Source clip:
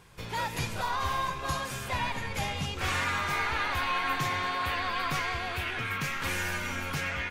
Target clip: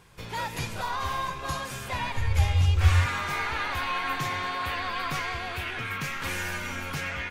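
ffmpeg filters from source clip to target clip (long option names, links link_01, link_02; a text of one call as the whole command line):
ffmpeg -i in.wav -filter_complex "[0:a]asettb=1/sr,asplit=3[link_01][link_02][link_03];[link_01]atrim=end=2.164[link_04];[link_02]atrim=start=2.16:end=3.06,asetpts=PTS-STARTPTS,afade=type=in:duration=0.004:curve=qsin,afade=type=out:start_time=0.896:duration=0.004:curve=qsin,lowshelf=frequency=120:width_type=q:width=3:gain=12[link_05];[link_03]atrim=start=3.056[link_06];[link_04][link_05]acrossfade=duration=0.004:curve1=hsin:curve2=qsin[link_07];[link_07][link_06]acrossfade=duration=0.004:curve1=qsin:curve2=hsin" out.wav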